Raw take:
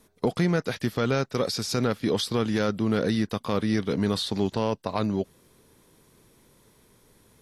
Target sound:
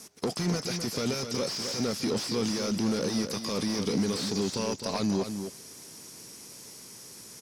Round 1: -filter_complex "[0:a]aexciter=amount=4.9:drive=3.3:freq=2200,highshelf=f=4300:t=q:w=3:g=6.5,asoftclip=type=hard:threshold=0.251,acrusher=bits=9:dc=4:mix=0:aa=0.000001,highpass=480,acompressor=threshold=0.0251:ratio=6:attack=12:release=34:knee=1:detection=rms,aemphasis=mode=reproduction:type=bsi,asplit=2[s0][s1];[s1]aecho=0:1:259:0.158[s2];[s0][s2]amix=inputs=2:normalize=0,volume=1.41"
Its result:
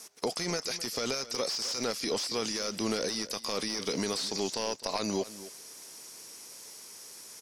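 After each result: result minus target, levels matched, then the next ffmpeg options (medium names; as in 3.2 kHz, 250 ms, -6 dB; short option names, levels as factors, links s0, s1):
250 Hz band -5.5 dB; echo-to-direct -8 dB; hard clipper: distortion -6 dB
-filter_complex "[0:a]aexciter=amount=4.9:drive=3.3:freq=2200,highshelf=f=4300:t=q:w=3:g=6.5,asoftclip=type=hard:threshold=0.251,acrusher=bits=9:dc=4:mix=0:aa=0.000001,highpass=210,acompressor=threshold=0.0251:ratio=6:attack=12:release=34:knee=1:detection=rms,aemphasis=mode=reproduction:type=bsi,asplit=2[s0][s1];[s1]aecho=0:1:259:0.158[s2];[s0][s2]amix=inputs=2:normalize=0,volume=1.41"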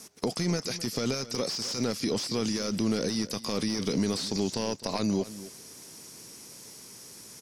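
echo-to-direct -8 dB; hard clipper: distortion -6 dB
-filter_complex "[0:a]aexciter=amount=4.9:drive=3.3:freq=2200,highshelf=f=4300:t=q:w=3:g=6.5,asoftclip=type=hard:threshold=0.251,acrusher=bits=9:dc=4:mix=0:aa=0.000001,highpass=210,acompressor=threshold=0.0251:ratio=6:attack=12:release=34:knee=1:detection=rms,aemphasis=mode=reproduction:type=bsi,asplit=2[s0][s1];[s1]aecho=0:1:259:0.398[s2];[s0][s2]amix=inputs=2:normalize=0,volume=1.41"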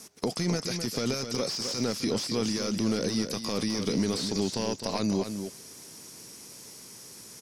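hard clipper: distortion -6 dB
-filter_complex "[0:a]aexciter=amount=4.9:drive=3.3:freq=2200,highshelf=f=4300:t=q:w=3:g=6.5,asoftclip=type=hard:threshold=0.075,acrusher=bits=9:dc=4:mix=0:aa=0.000001,highpass=210,acompressor=threshold=0.0251:ratio=6:attack=12:release=34:knee=1:detection=rms,aemphasis=mode=reproduction:type=bsi,asplit=2[s0][s1];[s1]aecho=0:1:259:0.398[s2];[s0][s2]amix=inputs=2:normalize=0,volume=1.41"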